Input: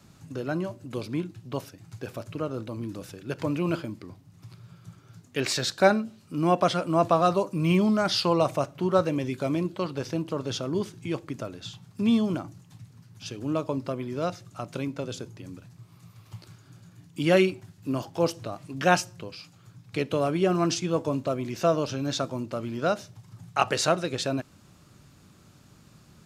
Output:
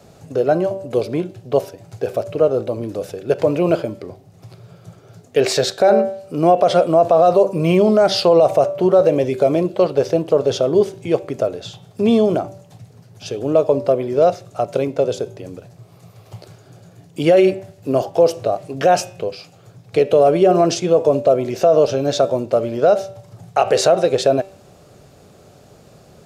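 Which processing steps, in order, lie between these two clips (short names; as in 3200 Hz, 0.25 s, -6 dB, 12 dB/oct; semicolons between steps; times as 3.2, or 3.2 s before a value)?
band shelf 550 Hz +13 dB 1.2 oct; de-hum 193.1 Hz, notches 20; limiter -10.5 dBFS, peak gain reduction 11 dB; gain +6 dB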